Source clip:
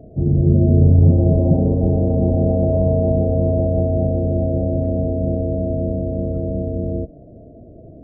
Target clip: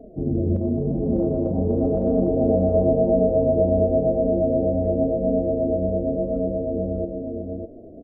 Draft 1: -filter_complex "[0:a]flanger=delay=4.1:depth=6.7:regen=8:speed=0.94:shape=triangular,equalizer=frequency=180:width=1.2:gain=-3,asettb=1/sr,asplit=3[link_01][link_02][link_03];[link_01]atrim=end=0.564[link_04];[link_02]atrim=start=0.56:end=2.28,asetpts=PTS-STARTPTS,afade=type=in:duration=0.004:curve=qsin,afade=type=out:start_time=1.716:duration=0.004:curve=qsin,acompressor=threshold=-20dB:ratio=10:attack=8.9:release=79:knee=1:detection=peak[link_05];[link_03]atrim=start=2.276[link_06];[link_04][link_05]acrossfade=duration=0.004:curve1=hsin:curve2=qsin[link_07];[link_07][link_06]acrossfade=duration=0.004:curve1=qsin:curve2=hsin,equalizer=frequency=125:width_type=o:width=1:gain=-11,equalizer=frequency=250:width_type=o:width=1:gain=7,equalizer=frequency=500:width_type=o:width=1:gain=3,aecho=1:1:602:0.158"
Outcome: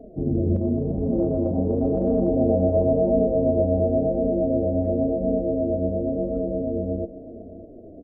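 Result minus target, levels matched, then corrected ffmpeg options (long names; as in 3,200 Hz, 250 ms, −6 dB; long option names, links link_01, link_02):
echo-to-direct −11.5 dB
-filter_complex "[0:a]flanger=delay=4.1:depth=6.7:regen=8:speed=0.94:shape=triangular,equalizer=frequency=180:width=1.2:gain=-3,asettb=1/sr,asplit=3[link_01][link_02][link_03];[link_01]atrim=end=0.564[link_04];[link_02]atrim=start=0.56:end=2.28,asetpts=PTS-STARTPTS,afade=type=in:duration=0.004:curve=qsin,afade=type=out:start_time=1.716:duration=0.004:curve=qsin,acompressor=threshold=-20dB:ratio=10:attack=8.9:release=79:knee=1:detection=peak[link_05];[link_03]atrim=start=2.276[link_06];[link_04][link_05]acrossfade=duration=0.004:curve1=hsin:curve2=qsin[link_07];[link_07][link_06]acrossfade=duration=0.004:curve1=qsin:curve2=hsin,equalizer=frequency=125:width_type=o:width=1:gain=-11,equalizer=frequency=250:width_type=o:width=1:gain=7,equalizer=frequency=500:width_type=o:width=1:gain=3,aecho=1:1:602:0.596"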